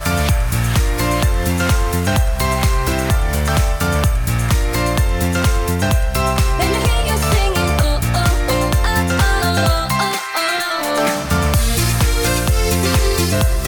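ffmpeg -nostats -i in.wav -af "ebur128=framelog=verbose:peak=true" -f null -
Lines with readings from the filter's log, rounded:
Integrated loudness:
  I:         -16.7 LUFS
  Threshold: -26.7 LUFS
Loudness range:
  LRA:         1.0 LU
  Threshold: -36.7 LUFS
  LRA low:   -17.2 LUFS
  LRA high:  -16.1 LUFS
True peak:
  Peak:       -6.0 dBFS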